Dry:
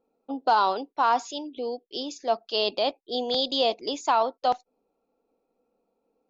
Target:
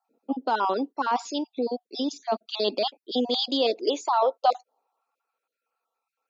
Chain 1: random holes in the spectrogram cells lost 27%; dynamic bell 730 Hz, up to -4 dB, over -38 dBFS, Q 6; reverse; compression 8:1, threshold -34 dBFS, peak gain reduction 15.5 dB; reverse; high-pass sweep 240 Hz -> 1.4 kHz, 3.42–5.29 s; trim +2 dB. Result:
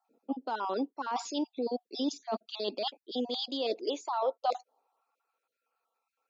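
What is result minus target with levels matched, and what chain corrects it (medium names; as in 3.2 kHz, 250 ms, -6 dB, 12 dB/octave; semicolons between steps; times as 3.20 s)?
compression: peak gain reduction +9.5 dB
random holes in the spectrogram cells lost 27%; dynamic bell 730 Hz, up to -4 dB, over -38 dBFS, Q 6; reverse; compression 8:1, threshold -23 dBFS, peak gain reduction 6 dB; reverse; high-pass sweep 240 Hz -> 1.4 kHz, 3.42–5.29 s; trim +2 dB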